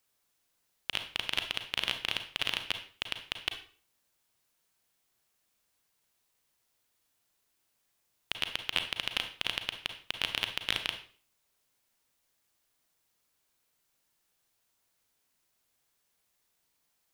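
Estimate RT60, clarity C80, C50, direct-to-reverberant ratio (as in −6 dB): 0.45 s, 13.5 dB, 9.0 dB, 6.5 dB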